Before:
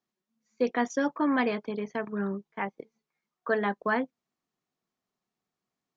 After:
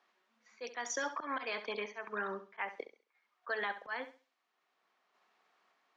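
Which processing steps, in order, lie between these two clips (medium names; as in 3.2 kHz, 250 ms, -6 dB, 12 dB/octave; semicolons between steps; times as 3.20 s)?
high-pass 640 Hz 12 dB/octave; level-controlled noise filter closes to 1.9 kHz, open at -27.5 dBFS; treble shelf 2.1 kHz +10.5 dB; compression 2.5:1, threshold -27 dBFS, peak gain reduction 5 dB; slow attack 200 ms; peak limiter -28.5 dBFS, peak gain reduction 11.5 dB; random-step tremolo; flutter echo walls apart 11.5 m, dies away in 0.32 s; three bands compressed up and down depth 40%; trim +5.5 dB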